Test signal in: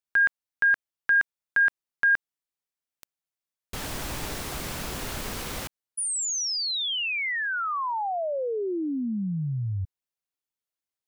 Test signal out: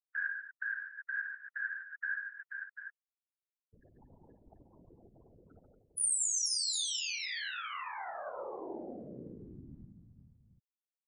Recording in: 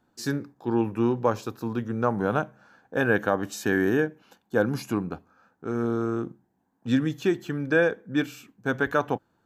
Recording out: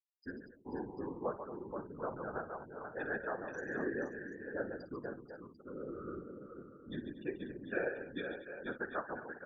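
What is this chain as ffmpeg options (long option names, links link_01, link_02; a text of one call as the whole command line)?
ffmpeg -i in.wav -filter_complex "[0:a]afftfilt=real='re*gte(hypot(re,im),0.0631)':imag='im*gte(hypot(re,im),0.0631)':win_size=1024:overlap=0.75,bass=frequency=250:gain=-11,treble=frequency=4000:gain=11,asplit=2[link_01][link_02];[link_02]aecho=0:1:53|140|234|482|538|742:0.237|0.355|0.168|0.447|0.158|0.266[link_03];[link_01][link_03]amix=inputs=2:normalize=0,afftfilt=real='hypot(re,im)*cos(2*PI*random(0))':imag='hypot(re,im)*sin(2*PI*random(1))':win_size=512:overlap=0.75,volume=-8.5dB" out.wav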